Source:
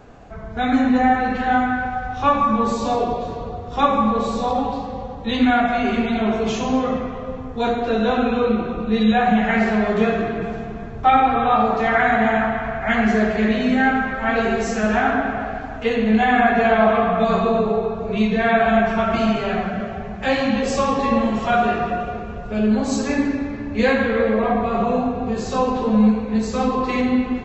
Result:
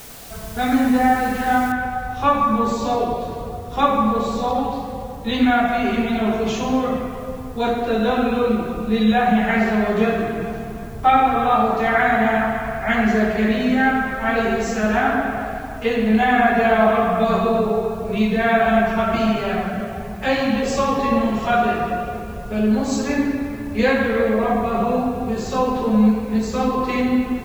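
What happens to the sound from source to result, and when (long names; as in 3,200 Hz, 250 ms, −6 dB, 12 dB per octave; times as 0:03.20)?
0:01.72: noise floor change −40 dB −53 dB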